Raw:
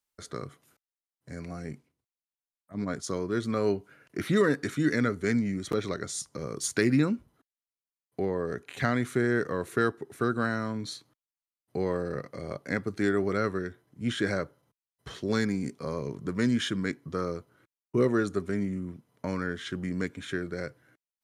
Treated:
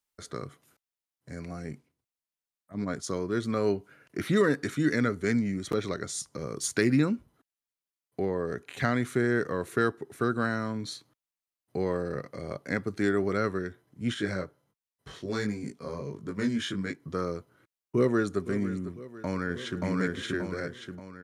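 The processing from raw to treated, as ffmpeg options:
ffmpeg -i in.wav -filter_complex "[0:a]asettb=1/sr,asplit=3[link_01][link_02][link_03];[link_01]atrim=end=14.144[link_04];[link_02]atrim=start=14.14:end=17,asetpts=PTS-STARTPTS,afade=type=in:duration=0.004:curve=qsin,afade=type=out:start_time=2.856:duration=0.004:curve=qsin,flanger=delay=18.5:depth=4:speed=1.4[link_05];[link_03]atrim=start=16.996[link_06];[link_04][link_05]acrossfade=duration=0.004:curve1=hsin:curve2=qsin[link_07];[link_07][link_06]acrossfade=duration=0.004:curve1=qsin:curve2=hsin,asplit=2[link_08][link_09];[link_09]afade=type=in:start_time=17.96:duration=0.01,afade=type=out:start_time=18.41:duration=0.01,aecho=0:1:500|1000|1500|2000|2500:0.211349|0.105674|0.0528372|0.0264186|0.0132093[link_10];[link_08][link_10]amix=inputs=2:normalize=0,asplit=2[link_11][link_12];[link_12]afade=type=in:start_time=18.92:duration=0.01,afade=type=out:start_time=19.83:duration=0.01,aecho=0:1:580|1160|1740|2320|2900|3480:1|0.45|0.2025|0.091125|0.0410062|0.0184528[link_13];[link_11][link_13]amix=inputs=2:normalize=0" out.wav

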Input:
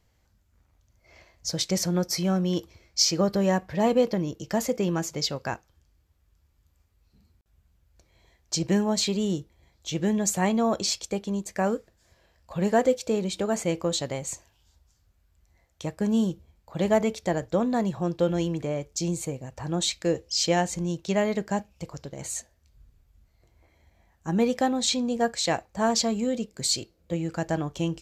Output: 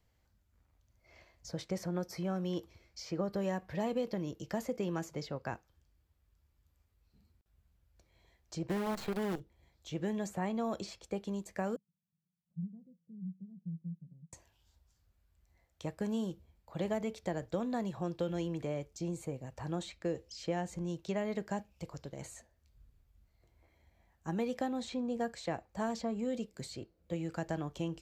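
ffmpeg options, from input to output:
ffmpeg -i in.wav -filter_complex "[0:a]asplit=3[link_01][link_02][link_03];[link_01]afade=type=out:start_time=8.69:duration=0.02[link_04];[link_02]acrusher=bits=5:dc=4:mix=0:aa=0.000001,afade=type=in:start_time=8.69:duration=0.02,afade=type=out:start_time=9.39:duration=0.02[link_05];[link_03]afade=type=in:start_time=9.39:duration=0.02[link_06];[link_04][link_05][link_06]amix=inputs=3:normalize=0,asettb=1/sr,asplit=3[link_07][link_08][link_09];[link_07]atrim=end=11.764[link_10];[link_08]atrim=start=11.76:end=14.33,asetpts=PTS-STARTPTS,afade=type=in:duration=0.004:curve=qsin,afade=type=out:start_time=2.566:duration=0.004:curve=qsin,asuperpass=centerf=170:order=4:qfactor=4.8[link_11];[link_09]atrim=start=14.326[link_12];[link_10][link_11]acrossfade=duration=0.004:curve1=hsin:curve2=qsin[link_13];[link_13][link_12]acrossfade=duration=0.004:curve1=qsin:curve2=hsin,equalizer=frequency=6400:width_type=o:width=0.77:gain=-3,acrossover=split=360|2000[link_14][link_15][link_16];[link_14]acompressor=threshold=-30dB:ratio=4[link_17];[link_15]acompressor=threshold=-29dB:ratio=4[link_18];[link_16]acompressor=threshold=-45dB:ratio=4[link_19];[link_17][link_18][link_19]amix=inputs=3:normalize=0,volume=-6.5dB" out.wav

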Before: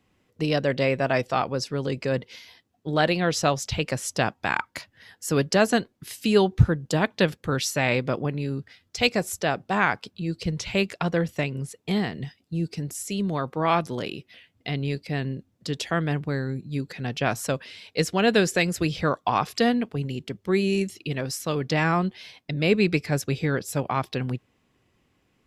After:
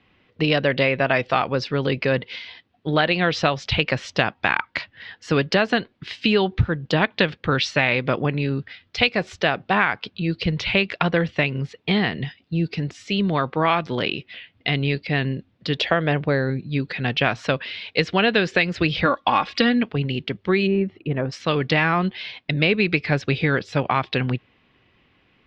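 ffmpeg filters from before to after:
ffmpeg -i in.wav -filter_complex "[0:a]asettb=1/sr,asplit=3[link_01][link_02][link_03];[link_01]atrim=end=15.784[link_04];[link_02]atrim=start=15.78:end=16.5,asetpts=PTS-STARTPTS,afade=type=in:duration=0.004:curve=qsin,afade=type=out:start_time=0.716:duration=0.004:curve=qsin,equalizer=frequency=570:width_type=o:width=0.77:gain=8.5[link_05];[link_03]atrim=start=16.496[link_06];[link_04][link_05]acrossfade=duration=0.004:curve1=hsin:curve2=qsin[link_07];[link_07][link_06]acrossfade=duration=0.004:curve1=qsin:curve2=hsin,asettb=1/sr,asplit=3[link_08][link_09][link_10];[link_08]atrim=end=19.054[link_11];[link_09]atrim=start=19.05:end=19.83,asetpts=PTS-STARTPTS,afade=type=in:duration=0.004:curve=qsin,afade=type=out:start_time=0.776:duration=0.004:curve=qsin,aecho=1:1:3.6:0.65,atrim=end_sample=34398[link_12];[link_10]atrim=start=19.826[link_13];[link_11][link_12]acrossfade=duration=0.004:curve1=hsin:curve2=qsin[link_14];[link_14][link_13]acrossfade=duration=0.004:curve1=qsin:curve2=hsin,asplit=3[link_15][link_16][link_17];[link_15]afade=type=out:start_time=20.66:duration=0.02[link_18];[link_16]lowpass=1100,afade=type=in:start_time=20.66:duration=0.02,afade=type=out:start_time=21.31:duration=0.02[link_19];[link_17]afade=type=in:start_time=21.31:duration=0.02[link_20];[link_18][link_19][link_20]amix=inputs=3:normalize=0,lowpass=frequency=4100:width=0.5412,lowpass=frequency=4100:width=1.3066,equalizer=frequency=2600:width=0.55:gain=7,acompressor=threshold=-20dB:ratio=6,volume=5dB" out.wav

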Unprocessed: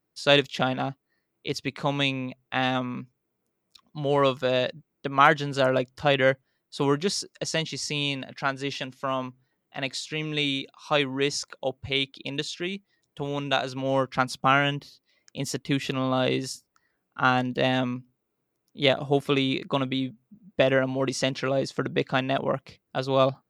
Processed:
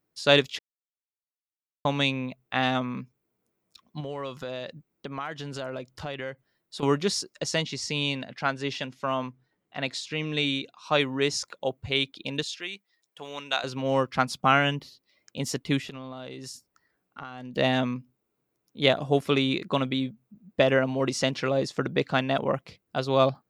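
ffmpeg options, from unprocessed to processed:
ffmpeg -i in.wav -filter_complex "[0:a]asettb=1/sr,asplit=3[link_01][link_02][link_03];[link_01]atrim=end=4.004[link_04];[link_02]atrim=start=4:end=6.83,asetpts=PTS-STARTPTS,afade=type=in:duration=0.004:curve=qsin,afade=type=out:start_time=2.826:duration=0.004:curve=qsin,acompressor=threshold=-33dB:ratio=4:attack=3.2:release=140:knee=1:detection=peak[link_05];[link_03]atrim=start=6.826[link_06];[link_04][link_05]acrossfade=duration=0.004:curve1=hsin:curve2=qsin[link_07];[link_07][link_06]acrossfade=duration=0.004:curve1=qsin:curve2=hsin,asettb=1/sr,asplit=3[link_08][link_09][link_10];[link_08]atrim=end=7.614[link_11];[link_09]atrim=start=7.61:end=10.97,asetpts=PTS-STARTPTS,afade=type=in:duration=0.004:curve=qsin,afade=type=out:start_time=3.356:duration=0.004:curve=qsin,highshelf=frequency=10000:gain=-9[link_12];[link_10]atrim=start=10.966[link_13];[link_11][link_12]acrossfade=duration=0.004:curve1=hsin:curve2=qsin[link_14];[link_14][link_13]acrossfade=duration=0.004:curve1=qsin:curve2=hsin,asettb=1/sr,asplit=3[link_15][link_16][link_17];[link_15]atrim=end=12.434[link_18];[link_16]atrim=start=12.43:end=13.64,asetpts=PTS-STARTPTS,afade=type=in:duration=0.004:curve=qsin,afade=type=out:start_time=1.206:duration=0.004:curve=qsin,highpass=frequency=1200:poles=1[link_19];[link_17]atrim=start=13.636[link_20];[link_18][link_19]acrossfade=duration=0.004:curve1=hsin:curve2=qsin[link_21];[link_21][link_20]acrossfade=duration=0.004:curve1=qsin:curve2=hsin,asettb=1/sr,asplit=3[link_22][link_23][link_24];[link_22]atrim=end=15.794[link_25];[link_23]atrim=start=15.79:end=17.54,asetpts=PTS-STARTPTS,afade=type=in:duration=0.004:curve=qsin,afade=type=out:start_time=1.746:duration=0.004:curve=qsin,acompressor=threshold=-35dB:ratio=16:attack=3.2:release=140:knee=1:detection=peak[link_26];[link_24]atrim=start=17.536[link_27];[link_25][link_26]acrossfade=duration=0.004:curve1=hsin:curve2=qsin[link_28];[link_28][link_27]acrossfade=duration=0.004:curve1=qsin:curve2=hsin,asplit=3[link_29][link_30][link_31];[link_29]atrim=end=0.59,asetpts=PTS-STARTPTS,afade=type=out:start_time=0.586:duration=0.004:curve=hsin[link_32];[link_30]atrim=start=0.59:end=1.85,asetpts=PTS-STARTPTS,volume=0[link_33];[link_31]atrim=start=1.85,asetpts=PTS-STARTPTS,afade=type=in:duration=0.004:curve=hsin[link_34];[link_32][link_33][link_34]concat=n=3:v=0:a=1" out.wav

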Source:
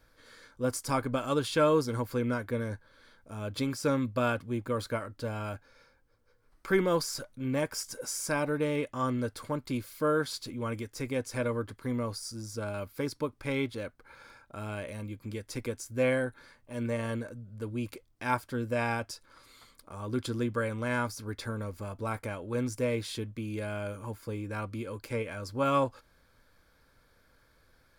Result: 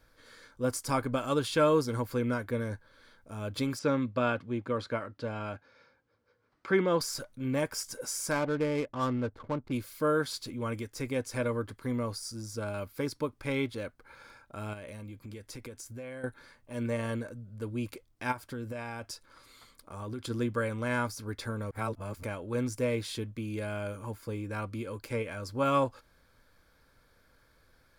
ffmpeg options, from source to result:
ffmpeg -i in.wav -filter_complex "[0:a]asettb=1/sr,asplit=3[link_01][link_02][link_03];[link_01]atrim=end=3.794[link_04];[link_02]atrim=start=3.79:end=7.01,asetpts=PTS-STARTPTS,afade=type=in:duration=0.004:curve=qsin,afade=type=out:start_time=3.216:duration=0.004:curve=qsin,highpass=110,lowpass=4600[link_05];[link_03]atrim=start=7.006[link_06];[link_04][link_05]acrossfade=duration=0.004:curve1=hsin:curve2=qsin[link_07];[link_07][link_06]acrossfade=duration=0.004:curve1=qsin:curve2=hsin,asettb=1/sr,asplit=3[link_08][link_09][link_10];[link_08]atrim=end=8.314[link_11];[link_09]atrim=start=8.31:end=9.72,asetpts=PTS-STARTPTS,afade=type=in:duration=0.004:curve=qsin,afade=type=out:start_time=1.406:duration=0.004:curve=qsin,adynamicsmooth=sensitivity=8:basefreq=590[link_12];[link_10]atrim=start=9.716[link_13];[link_11][link_12]acrossfade=duration=0.004:curve1=hsin:curve2=qsin[link_14];[link_14][link_13]acrossfade=duration=0.004:curve1=qsin:curve2=hsin,asettb=1/sr,asplit=3[link_15][link_16][link_17];[link_15]atrim=end=14.734[link_18];[link_16]atrim=start=14.73:end=16.24,asetpts=PTS-STARTPTS,afade=type=in:duration=0.004:curve=qsin,afade=type=out:start_time=1.506:duration=0.004:curve=qsin,acompressor=threshold=-40dB:ratio=6:attack=3.2:release=140:knee=1:detection=peak[link_19];[link_17]atrim=start=16.236[link_20];[link_18][link_19]acrossfade=duration=0.004:curve1=hsin:curve2=qsin[link_21];[link_21][link_20]acrossfade=duration=0.004:curve1=qsin:curve2=hsin,asplit=3[link_22][link_23][link_24];[link_22]afade=type=out:start_time=18.31:duration=0.02[link_25];[link_23]acompressor=threshold=-34dB:ratio=12:attack=3.2:release=140:knee=1:detection=peak,afade=type=in:start_time=18.31:duration=0.02,afade=type=out:start_time=20.29:duration=0.02[link_26];[link_24]afade=type=in:start_time=20.29:duration=0.02[link_27];[link_25][link_26][link_27]amix=inputs=3:normalize=0,asplit=3[link_28][link_29][link_30];[link_28]atrim=end=21.712[link_31];[link_29]atrim=start=21.708:end=22.232,asetpts=PTS-STARTPTS,areverse[link_32];[link_30]atrim=start=22.228[link_33];[link_31][link_32]acrossfade=duration=0.004:curve1=hsin:curve2=hsin[link_34];[link_34][link_33]acrossfade=duration=0.004:curve1=hsin:curve2=hsin" out.wav

